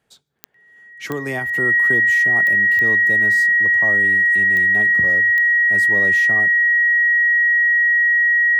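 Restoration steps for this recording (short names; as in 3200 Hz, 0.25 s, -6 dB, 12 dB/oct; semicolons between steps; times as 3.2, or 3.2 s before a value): de-click; notch 1900 Hz, Q 30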